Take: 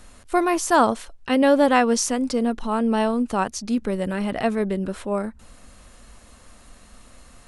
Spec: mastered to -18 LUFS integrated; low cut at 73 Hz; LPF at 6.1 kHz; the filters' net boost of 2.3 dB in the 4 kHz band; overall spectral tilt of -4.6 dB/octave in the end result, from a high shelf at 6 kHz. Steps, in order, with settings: high-pass 73 Hz; low-pass 6.1 kHz; peaking EQ 4 kHz +6.5 dB; treble shelf 6 kHz -5 dB; trim +4 dB

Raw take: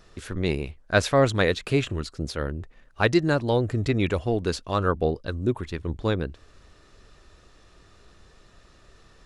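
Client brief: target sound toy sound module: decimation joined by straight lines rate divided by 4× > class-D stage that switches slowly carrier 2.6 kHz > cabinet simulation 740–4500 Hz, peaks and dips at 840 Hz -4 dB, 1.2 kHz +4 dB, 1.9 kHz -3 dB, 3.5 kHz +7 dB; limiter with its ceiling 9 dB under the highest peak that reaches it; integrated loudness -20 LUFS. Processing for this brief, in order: peak limiter -15 dBFS; decimation joined by straight lines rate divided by 4×; class-D stage that switches slowly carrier 2.6 kHz; cabinet simulation 740–4500 Hz, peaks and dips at 840 Hz -4 dB, 1.2 kHz +4 dB, 1.9 kHz -3 dB, 3.5 kHz +7 dB; trim +15 dB

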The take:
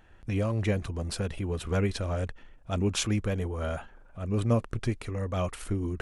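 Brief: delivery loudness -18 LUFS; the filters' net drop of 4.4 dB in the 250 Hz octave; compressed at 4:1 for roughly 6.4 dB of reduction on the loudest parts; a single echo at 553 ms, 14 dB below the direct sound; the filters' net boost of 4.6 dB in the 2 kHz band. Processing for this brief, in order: peaking EQ 250 Hz -6 dB; peaking EQ 2 kHz +6 dB; compression 4:1, threshold -30 dBFS; delay 553 ms -14 dB; trim +17 dB

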